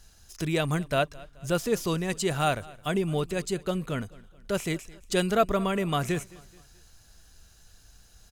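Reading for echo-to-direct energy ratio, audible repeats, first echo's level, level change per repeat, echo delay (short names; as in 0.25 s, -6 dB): -21.0 dB, 2, -22.0 dB, -7.0 dB, 0.215 s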